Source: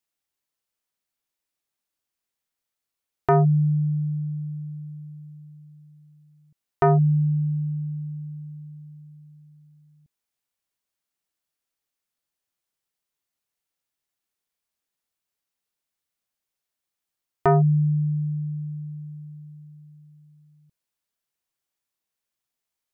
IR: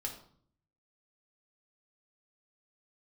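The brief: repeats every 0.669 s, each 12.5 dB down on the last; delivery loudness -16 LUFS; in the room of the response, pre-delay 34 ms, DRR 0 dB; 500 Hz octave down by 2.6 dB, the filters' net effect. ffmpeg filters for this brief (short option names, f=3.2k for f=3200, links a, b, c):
-filter_complex "[0:a]equalizer=f=500:t=o:g=-4,aecho=1:1:669|1338|2007:0.237|0.0569|0.0137,asplit=2[a][b];[1:a]atrim=start_sample=2205,adelay=34[c];[b][c]afir=irnorm=-1:irlink=0,volume=0dB[d];[a][d]amix=inputs=2:normalize=0,volume=2.5dB"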